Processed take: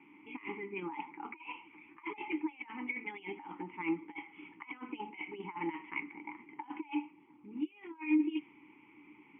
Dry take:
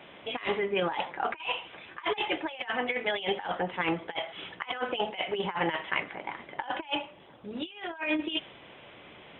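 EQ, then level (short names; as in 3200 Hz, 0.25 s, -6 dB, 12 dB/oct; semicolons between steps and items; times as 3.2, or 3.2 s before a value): vowel filter u; fixed phaser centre 1600 Hz, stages 4; +7.0 dB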